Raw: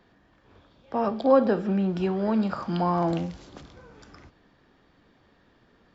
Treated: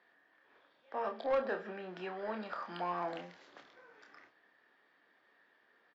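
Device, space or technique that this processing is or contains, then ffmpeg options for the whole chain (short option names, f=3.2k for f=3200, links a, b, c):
intercom: -filter_complex "[0:a]highpass=480,lowpass=4.5k,equalizer=f=1.8k:t=o:w=0.5:g=9,asoftclip=type=tanh:threshold=-18dB,asplit=2[a][b];[b]adelay=28,volume=-6.5dB[c];[a][c]amix=inputs=2:normalize=0,volume=-9dB"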